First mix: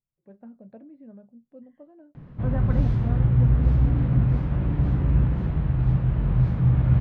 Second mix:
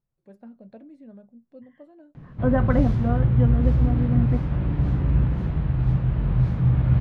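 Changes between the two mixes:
first voice: remove distance through air 380 m; second voice +11.0 dB; master: add treble shelf 5.6 kHz +8.5 dB

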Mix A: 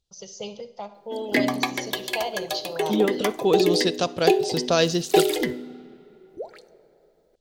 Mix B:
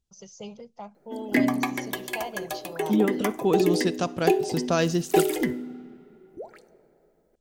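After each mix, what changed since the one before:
first voice: send off; master: add graphic EQ 250/500/4000 Hz +4/-6/-11 dB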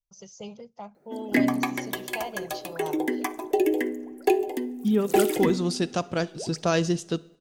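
second voice: entry +1.95 s

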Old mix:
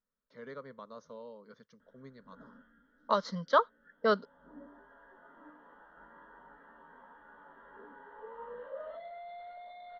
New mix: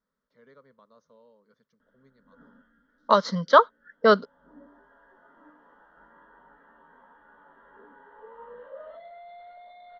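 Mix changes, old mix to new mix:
first voice -10.0 dB; second voice +9.5 dB

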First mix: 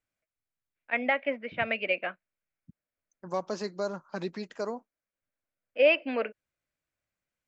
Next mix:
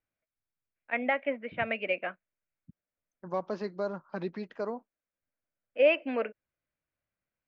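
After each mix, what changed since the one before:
master: add distance through air 260 m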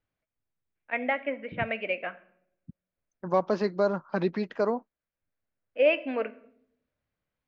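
second voice +8.0 dB; reverb: on, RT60 0.70 s

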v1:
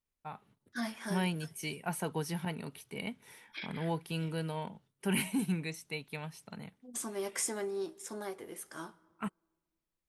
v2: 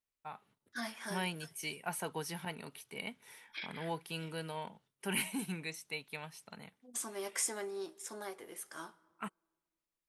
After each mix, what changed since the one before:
master: add bass shelf 360 Hz -10.5 dB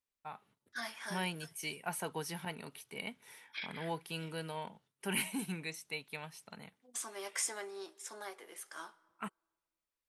second voice: add frequency weighting A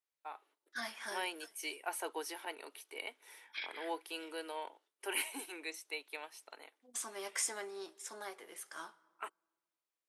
first voice: add elliptic high-pass 310 Hz, stop band 40 dB

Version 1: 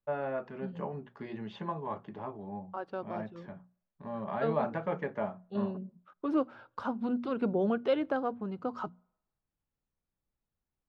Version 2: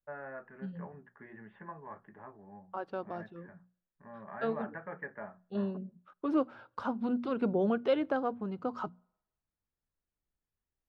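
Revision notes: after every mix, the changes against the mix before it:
first voice: add four-pole ladder low-pass 1.9 kHz, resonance 70%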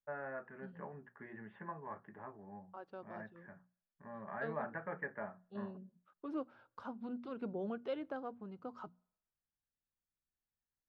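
second voice -11.5 dB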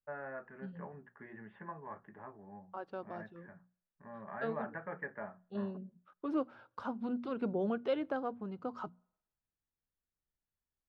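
second voice +6.5 dB

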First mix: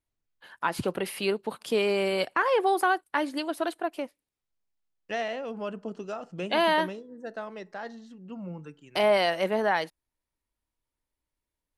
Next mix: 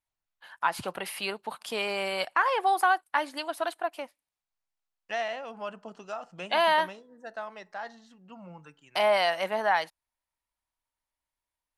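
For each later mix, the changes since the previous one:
master: add resonant low shelf 560 Hz -8.5 dB, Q 1.5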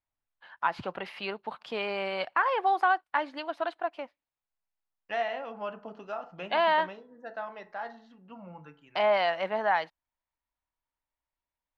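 second voice: send +10.0 dB; master: add distance through air 230 m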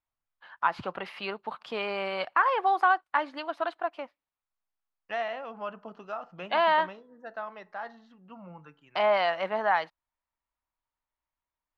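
second voice: send -7.5 dB; master: add peaking EQ 1.2 kHz +4.5 dB 0.49 oct

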